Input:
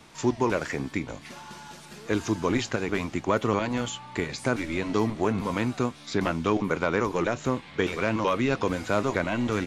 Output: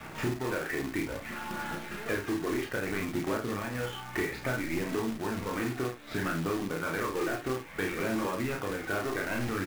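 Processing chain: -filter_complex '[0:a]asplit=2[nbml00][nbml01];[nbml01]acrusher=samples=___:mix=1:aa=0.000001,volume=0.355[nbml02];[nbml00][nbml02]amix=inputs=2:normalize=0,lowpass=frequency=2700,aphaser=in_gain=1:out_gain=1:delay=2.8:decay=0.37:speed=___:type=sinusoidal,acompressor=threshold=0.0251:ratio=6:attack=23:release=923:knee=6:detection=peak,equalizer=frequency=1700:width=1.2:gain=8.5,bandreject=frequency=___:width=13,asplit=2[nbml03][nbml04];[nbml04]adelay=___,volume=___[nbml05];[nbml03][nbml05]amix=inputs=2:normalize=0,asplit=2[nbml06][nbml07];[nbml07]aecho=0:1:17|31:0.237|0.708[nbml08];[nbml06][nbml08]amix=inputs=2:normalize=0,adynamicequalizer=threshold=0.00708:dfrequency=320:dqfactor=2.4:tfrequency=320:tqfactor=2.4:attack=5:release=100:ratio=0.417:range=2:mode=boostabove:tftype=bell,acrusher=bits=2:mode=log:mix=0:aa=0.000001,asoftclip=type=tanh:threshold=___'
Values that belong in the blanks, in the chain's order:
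20, 0.61, 1000, 49, 0.398, 0.0794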